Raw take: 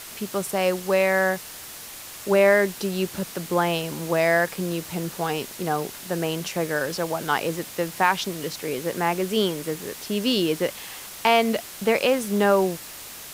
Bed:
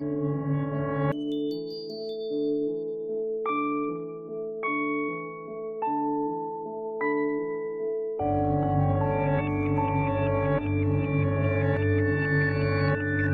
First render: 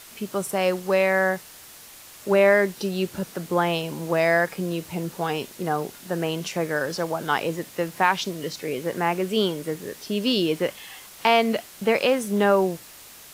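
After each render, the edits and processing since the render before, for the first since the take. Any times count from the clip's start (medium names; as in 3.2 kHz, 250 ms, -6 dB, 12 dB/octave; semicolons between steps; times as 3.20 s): noise print and reduce 6 dB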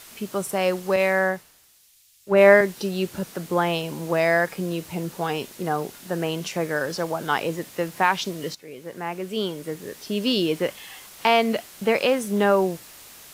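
0.96–2.61 s: three bands expanded up and down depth 100%; 8.55–10.19 s: fade in, from -14.5 dB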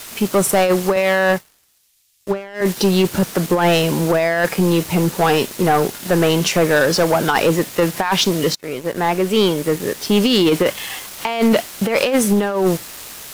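compressor with a negative ratio -23 dBFS, ratio -0.5; waveshaping leveller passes 3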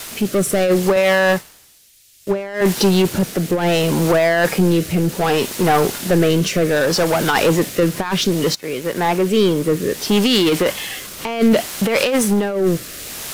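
power-law waveshaper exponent 0.7; rotary cabinet horn 0.65 Hz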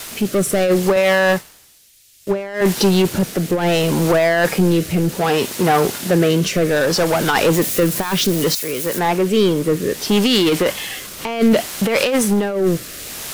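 5.19–6.44 s: high-pass 60 Hz; 7.53–8.99 s: zero-crossing glitches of -19 dBFS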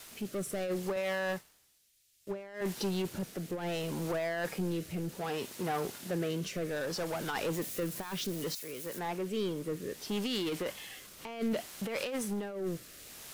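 trim -19 dB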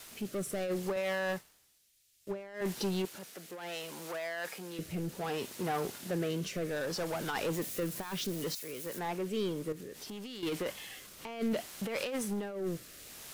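3.05–4.79 s: high-pass 970 Hz 6 dB/octave; 9.72–10.43 s: compression, threshold -41 dBFS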